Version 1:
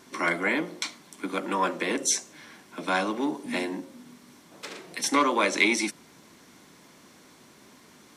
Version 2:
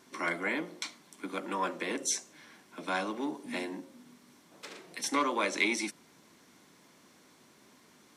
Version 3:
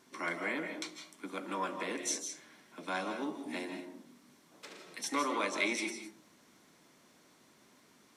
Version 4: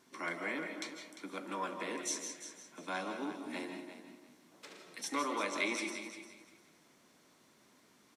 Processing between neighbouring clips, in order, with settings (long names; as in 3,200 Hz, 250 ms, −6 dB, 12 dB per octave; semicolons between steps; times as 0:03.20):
low-shelf EQ 70 Hz −7 dB; level −6.5 dB
convolution reverb RT60 0.40 s, pre-delay 120 ms, DRR 5.5 dB; level −4 dB
repeating echo 349 ms, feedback 20%, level −11.5 dB; level −2.5 dB